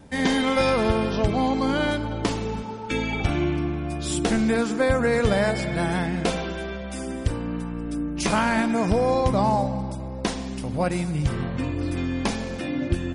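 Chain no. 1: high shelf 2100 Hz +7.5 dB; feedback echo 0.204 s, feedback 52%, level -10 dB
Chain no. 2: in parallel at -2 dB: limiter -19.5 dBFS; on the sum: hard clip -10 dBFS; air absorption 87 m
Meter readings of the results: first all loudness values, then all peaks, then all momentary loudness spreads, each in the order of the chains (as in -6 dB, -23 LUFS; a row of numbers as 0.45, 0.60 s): -23.0, -21.5 LUFS; -6.5, -10.0 dBFS; 10, 7 LU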